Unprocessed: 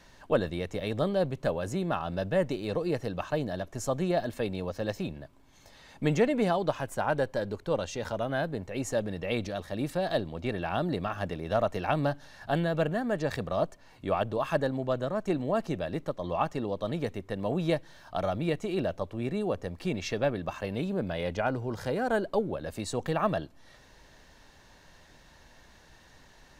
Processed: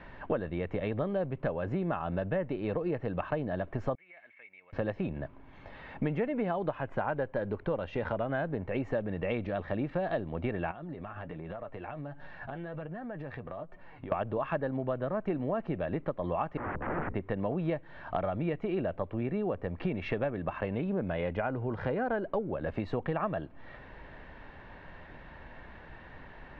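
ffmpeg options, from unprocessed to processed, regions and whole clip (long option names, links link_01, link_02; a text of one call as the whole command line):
ffmpeg -i in.wav -filter_complex "[0:a]asettb=1/sr,asplit=3[link_01][link_02][link_03];[link_01]atrim=end=3.954[link_04];[link_02]atrim=start=3.95:end=4.73,asetpts=PTS-STARTPTS,afade=type=in:duration=0.004:curve=qsin,afade=type=out:start_time=0.776:duration=0.004:curve=qsin,bandpass=frequency=2200:width_type=q:width=16,acompressor=threshold=-57dB:ratio=2.5:attack=3.2:release=140:knee=1:detection=peak[link_05];[link_03]atrim=start=4.726[link_06];[link_04][link_05]acrossfade=duration=0.004:curve1=hsin:curve2=qsin[link_07];[link_07][link_06]acrossfade=duration=0.004:curve1=qsin:curve2=hsin,asettb=1/sr,asplit=3[link_08][link_09][link_10];[link_08]atrim=end=10.714[link_11];[link_09]atrim=start=10.71:end=14.12,asetpts=PTS-STARTPTS,afade=type=in:duration=0.004:curve=qsin,afade=type=out:start_time=3.406:duration=0.004:curve=qsin,flanger=delay=5.4:depth=3.1:regen=44:speed=1.3:shape=sinusoidal,acompressor=threshold=-44dB:ratio=16:attack=3.2:release=140:knee=1:detection=peak[link_12];[link_10]atrim=start=14.116[link_13];[link_11][link_12]acrossfade=duration=0.004:curve1=hsin:curve2=qsin[link_14];[link_14][link_13]acrossfade=duration=0.004:curve1=qsin:curve2=hsin,asettb=1/sr,asplit=3[link_15][link_16][link_17];[link_15]atrim=end=16.574[link_18];[link_16]atrim=start=16.57:end=17.15,asetpts=PTS-STARTPTS,afade=type=in:duration=0.004:curve=qsin,afade=type=out:start_time=0.576:duration=0.004:curve=qsin,aeval=exprs='val(0)+0.00282*(sin(2*PI*60*n/s)+sin(2*PI*2*60*n/s)/2+sin(2*PI*3*60*n/s)/3+sin(2*PI*4*60*n/s)/4+sin(2*PI*5*60*n/s)/5)':channel_layout=same,aeval=exprs='(mod(44.7*val(0)+1,2)-1)/44.7':channel_layout=same,lowpass=frequency=1700:width=0.5412,lowpass=frequency=1700:width=1.3066[link_19];[link_17]atrim=start=17.146[link_20];[link_18][link_19]acrossfade=duration=0.004:curve1=hsin:curve2=qsin[link_21];[link_21][link_20]acrossfade=duration=0.004:curve1=qsin:curve2=hsin,lowpass=frequency=2500:width=0.5412,lowpass=frequency=2500:width=1.3066,acompressor=threshold=-37dB:ratio=6,volume=8dB" out.wav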